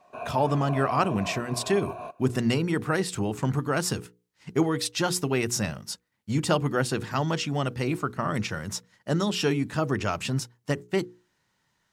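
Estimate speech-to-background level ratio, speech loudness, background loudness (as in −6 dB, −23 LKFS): 9.5 dB, −27.5 LKFS, −37.0 LKFS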